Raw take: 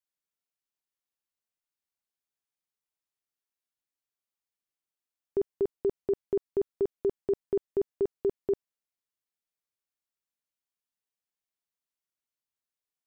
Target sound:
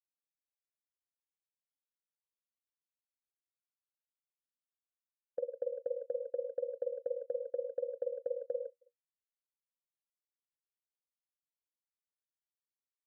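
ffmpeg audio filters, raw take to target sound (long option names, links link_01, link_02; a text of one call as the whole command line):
ffmpeg -i in.wav -af "asuperpass=centerf=520:order=12:qfactor=6.2,aecho=1:1:105|141|173|318:0.501|0.266|0.2|0.299,agate=range=-22dB:threshold=-53dB:ratio=16:detection=peak,volume=14.5dB" out.wav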